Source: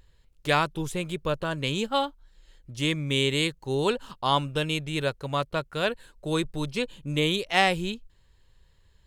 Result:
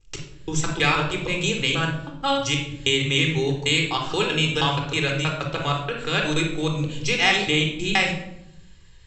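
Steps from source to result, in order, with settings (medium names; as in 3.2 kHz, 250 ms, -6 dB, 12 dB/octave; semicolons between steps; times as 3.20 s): slices played last to first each 159 ms, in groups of 3; compression 2:1, threshold -31 dBFS, peak gain reduction 8.5 dB; rippled Chebyshev low-pass 7.8 kHz, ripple 6 dB; treble shelf 3.2 kHz +10.5 dB; reverberation RT60 0.80 s, pre-delay 3 ms, DRR 1.5 dB; trim +7.5 dB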